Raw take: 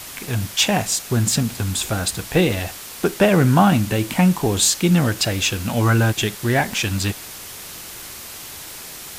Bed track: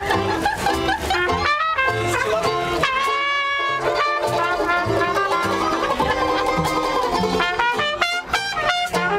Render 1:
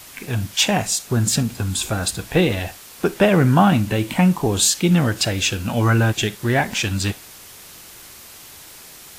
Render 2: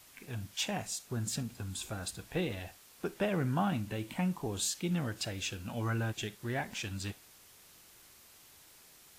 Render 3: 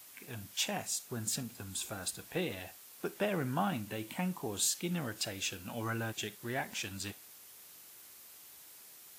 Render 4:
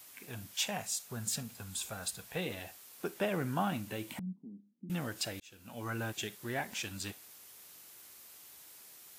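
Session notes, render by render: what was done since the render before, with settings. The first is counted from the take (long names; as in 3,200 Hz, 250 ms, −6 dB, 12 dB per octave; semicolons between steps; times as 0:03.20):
noise reduction from a noise print 6 dB
level −17 dB
high-pass filter 210 Hz 6 dB per octave; high-shelf EQ 11,000 Hz +10.5 dB
0:00.54–0:02.46: parametric band 320 Hz −12 dB 0.41 octaves; 0:04.19–0:04.90: flat-topped band-pass 220 Hz, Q 3.2; 0:05.40–0:06.03: fade in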